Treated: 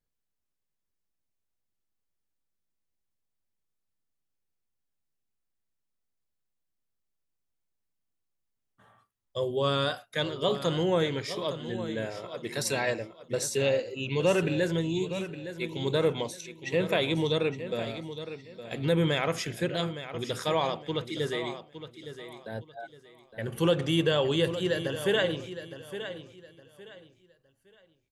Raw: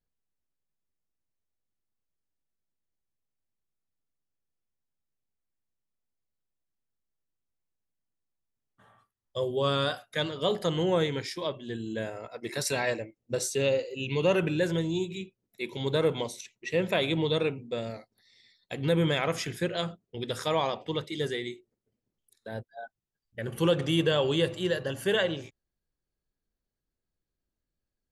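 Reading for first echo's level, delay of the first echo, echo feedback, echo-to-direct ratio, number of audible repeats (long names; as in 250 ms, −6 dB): −11.5 dB, 863 ms, 27%, −11.0 dB, 3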